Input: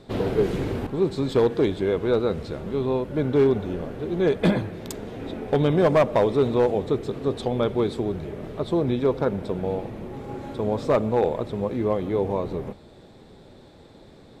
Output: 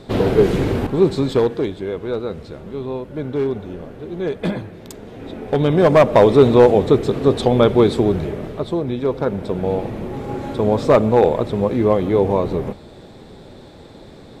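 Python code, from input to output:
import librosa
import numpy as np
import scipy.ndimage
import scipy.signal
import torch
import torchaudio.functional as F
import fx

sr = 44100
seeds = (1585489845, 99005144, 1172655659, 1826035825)

y = fx.gain(x, sr, db=fx.line((1.1, 8.0), (1.75, -2.0), (4.98, -2.0), (6.32, 10.0), (8.22, 10.0), (8.85, 0.0), (9.9, 8.0)))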